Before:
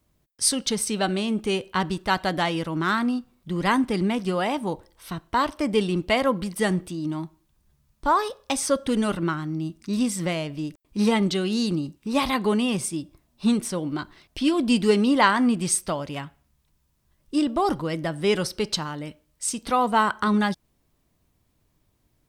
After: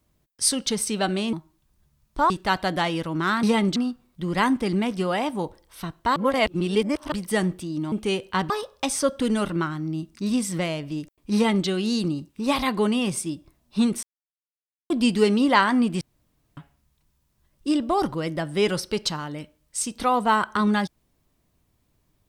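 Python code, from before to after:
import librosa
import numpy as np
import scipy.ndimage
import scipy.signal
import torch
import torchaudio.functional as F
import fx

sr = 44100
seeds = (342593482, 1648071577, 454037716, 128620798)

y = fx.edit(x, sr, fx.swap(start_s=1.33, length_s=0.58, other_s=7.2, other_length_s=0.97),
    fx.reverse_span(start_s=5.44, length_s=0.96),
    fx.duplicate(start_s=11.01, length_s=0.33, to_s=3.04),
    fx.silence(start_s=13.7, length_s=0.87),
    fx.room_tone_fill(start_s=15.68, length_s=0.56), tone=tone)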